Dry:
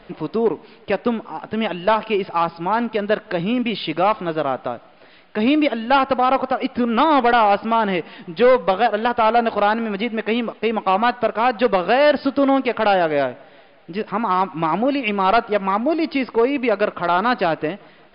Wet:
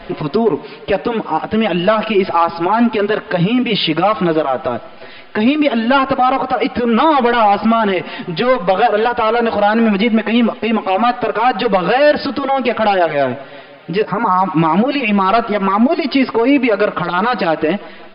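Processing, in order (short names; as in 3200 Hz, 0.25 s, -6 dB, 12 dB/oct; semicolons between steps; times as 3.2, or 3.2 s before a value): 14.04–14.46 bell 3000 Hz -12 dB 0.73 oct; maximiser +17.5 dB; endless flanger 5.4 ms +0.38 Hz; gain -2 dB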